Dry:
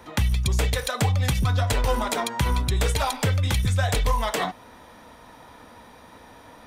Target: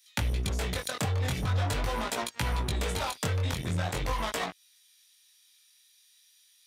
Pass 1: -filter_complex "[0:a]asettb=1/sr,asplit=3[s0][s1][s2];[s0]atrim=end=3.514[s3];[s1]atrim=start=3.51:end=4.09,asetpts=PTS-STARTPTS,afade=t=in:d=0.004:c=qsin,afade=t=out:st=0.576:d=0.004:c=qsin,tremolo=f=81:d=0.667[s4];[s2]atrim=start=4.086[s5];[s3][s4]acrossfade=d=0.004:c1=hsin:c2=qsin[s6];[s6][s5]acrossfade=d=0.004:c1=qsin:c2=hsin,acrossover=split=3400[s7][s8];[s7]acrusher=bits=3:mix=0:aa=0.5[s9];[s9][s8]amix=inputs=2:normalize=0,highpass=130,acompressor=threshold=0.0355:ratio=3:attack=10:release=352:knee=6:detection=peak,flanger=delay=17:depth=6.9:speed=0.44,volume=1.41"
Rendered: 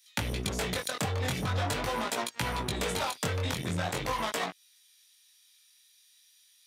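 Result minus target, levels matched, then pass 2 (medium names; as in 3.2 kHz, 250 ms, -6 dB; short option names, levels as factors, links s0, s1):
125 Hz band -3.0 dB
-filter_complex "[0:a]asettb=1/sr,asplit=3[s0][s1][s2];[s0]atrim=end=3.514[s3];[s1]atrim=start=3.51:end=4.09,asetpts=PTS-STARTPTS,afade=t=in:d=0.004:c=qsin,afade=t=out:st=0.576:d=0.004:c=qsin,tremolo=f=81:d=0.667[s4];[s2]atrim=start=4.086[s5];[s3][s4]acrossfade=d=0.004:c1=hsin:c2=qsin[s6];[s6][s5]acrossfade=d=0.004:c1=qsin:c2=hsin,acrossover=split=3400[s7][s8];[s7]acrusher=bits=3:mix=0:aa=0.5[s9];[s9][s8]amix=inputs=2:normalize=0,highpass=51,acompressor=threshold=0.0355:ratio=3:attack=10:release=352:knee=6:detection=peak,flanger=delay=17:depth=6.9:speed=0.44,volume=1.41"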